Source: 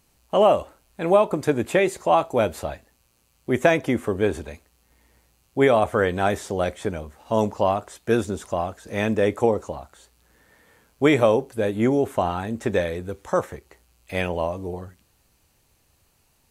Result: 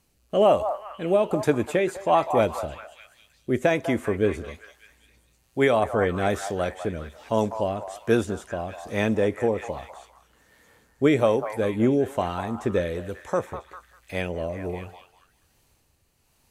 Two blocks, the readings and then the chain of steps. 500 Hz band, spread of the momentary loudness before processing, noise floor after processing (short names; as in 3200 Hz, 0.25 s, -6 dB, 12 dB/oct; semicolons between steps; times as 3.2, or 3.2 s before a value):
-2.0 dB, 14 LU, -66 dBFS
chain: rotary speaker horn 1.2 Hz; delay with a stepping band-pass 0.199 s, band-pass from 920 Hz, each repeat 0.7 oct, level -6 dB